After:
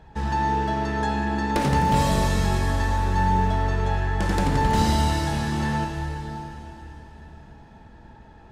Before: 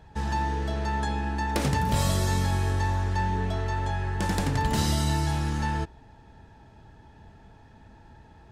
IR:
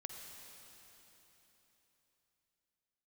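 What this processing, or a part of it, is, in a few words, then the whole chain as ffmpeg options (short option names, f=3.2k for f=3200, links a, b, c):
swimming-pool hall: -filter_complex "[0:a]equalizer=f=97:w=2.4:g=-6[a];[1:a]atrim=start_sample=2205[b];[a][b]afir=irnorm=-1:irlink=0,highshelf=f=4.4k:g=-7,volume=8dB"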